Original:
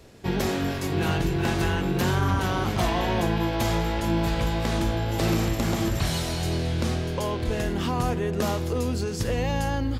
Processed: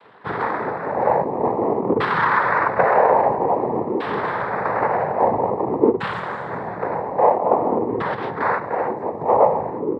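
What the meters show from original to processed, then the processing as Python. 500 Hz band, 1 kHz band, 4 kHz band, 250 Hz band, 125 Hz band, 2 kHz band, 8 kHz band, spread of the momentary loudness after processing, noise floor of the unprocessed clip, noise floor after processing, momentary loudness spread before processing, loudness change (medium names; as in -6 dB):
+9.5 dB, +12.0 dB, -10.5 dB, 0.0 dB, -9.5 dB, +6.5 dB, under -25 dB, 9 LU, -29 dBFS, -30 dBFS, 3 LU, +5.5 dB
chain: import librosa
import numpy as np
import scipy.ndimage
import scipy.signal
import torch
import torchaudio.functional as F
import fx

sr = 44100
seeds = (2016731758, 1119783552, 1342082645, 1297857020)

y = fx.filter_lfo_lowpass(x, sr, shape='saw_down', hz=0.5, low_hz=310.0, high_hz=1900.0, q=5.8)
y = fx.noise_vocoder(y, sr, seeds[0], bands=6)
y = fx.graphic_eq_10(y, sr, hz=(500, 1000, 2000), db=(10, 11, 5))
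y = F.gain(torch.from_numpy(y), -8.0).numpy()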